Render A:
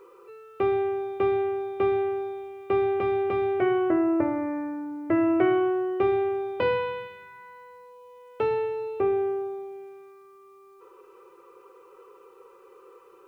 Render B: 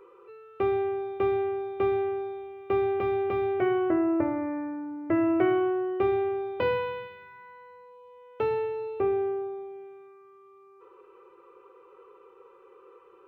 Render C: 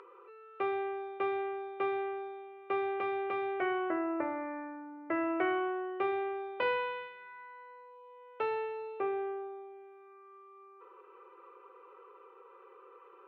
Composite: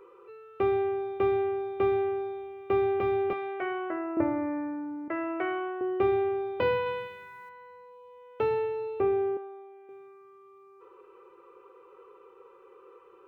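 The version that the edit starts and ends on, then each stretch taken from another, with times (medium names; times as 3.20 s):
B
3.33–4.17 s: from C
5.08–5.81 s: from C
6.86–7.49 s: from A
9.37–9.89 s: from C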